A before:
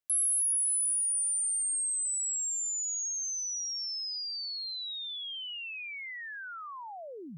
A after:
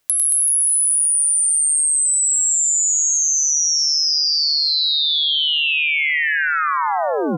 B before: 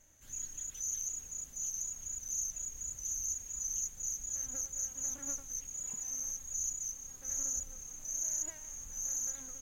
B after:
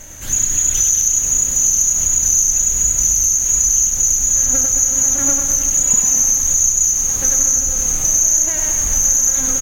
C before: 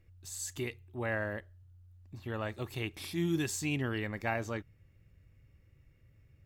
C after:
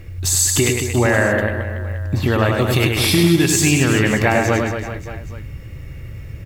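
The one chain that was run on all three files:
compression 6:1, threshold -42 dBFS; on a send: reverse bouncing-ball echo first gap 100 ms, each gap 1.25×, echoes 5; on the sum: peak normalisation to -1.5 dBFS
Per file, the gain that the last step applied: +23.0 dB, +28.5 dB, +27.5 dB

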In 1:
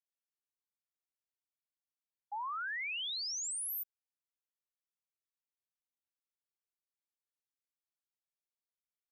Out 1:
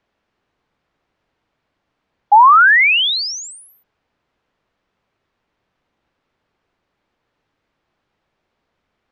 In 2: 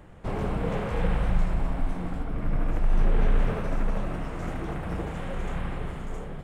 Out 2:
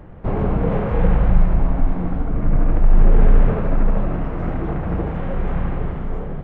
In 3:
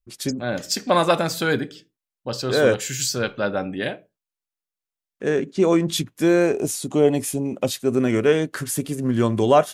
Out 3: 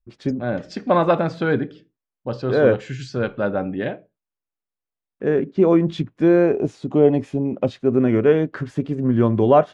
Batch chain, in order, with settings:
tape spacing loss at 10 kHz 40 dB; peak normalisation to -3 dBFS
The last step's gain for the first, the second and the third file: +36.0 dB, +10.0 dB, +4.0 dB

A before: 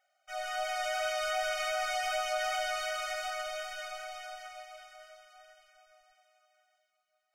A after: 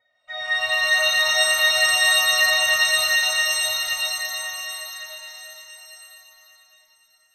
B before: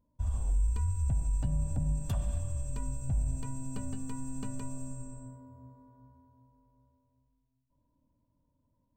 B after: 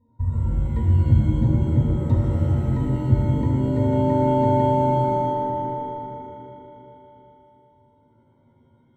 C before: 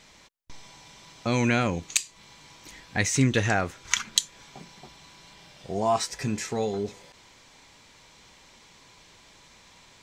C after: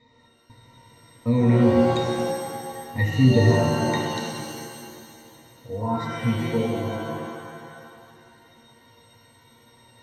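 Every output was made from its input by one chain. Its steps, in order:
pitch-class resonator A#, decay 0.12 s; pitch-shifted reverb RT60 2 s, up +7 st, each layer -2 dB, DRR 1.5 dB; peak normalisation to -6 dBFS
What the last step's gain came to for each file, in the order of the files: +24.0 dB, +20.5 dB, +10.0 dB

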